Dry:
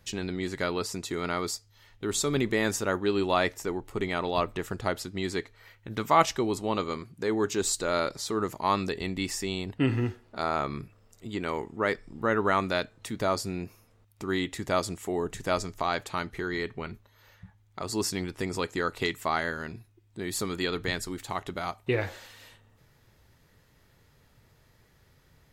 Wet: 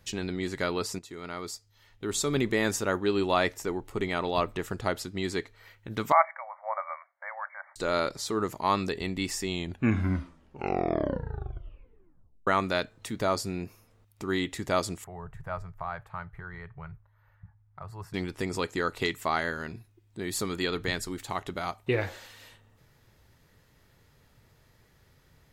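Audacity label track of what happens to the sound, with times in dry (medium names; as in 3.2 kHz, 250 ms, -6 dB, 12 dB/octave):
0.990000	2.400000	fade in, from -12.5 dB
6.120000	7.760000	brick-wall FIR band-pass 540–2300 Hz
9.410000	9.410000	tape stop 3.06 s
15.040000	18.140000	FFT filter 160 Hz 0 dB, 220 Hz -24 dB, 340 Hz -22 dB, 620 Hz -9 dB, 890 Hz -6 dB, 1.5 kHz -6 dB, 3.6 kHz -24 dB, 6.6 kHz -29 dB, 14 kHz -18 dB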